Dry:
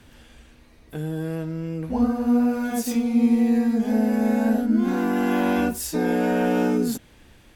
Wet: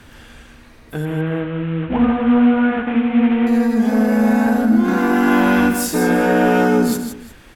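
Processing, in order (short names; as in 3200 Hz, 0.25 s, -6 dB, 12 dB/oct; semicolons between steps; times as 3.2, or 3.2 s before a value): 1.05–3.47 CVSD 16 kbps; soft clip -13.5 dBFS, distortion -21 dB; bell 1400 Hz +5.5 dB 1.1 oct; tapped delay 74/158/353 ms -13.5/-7.5/-19.5 dB; gain +6.5 dB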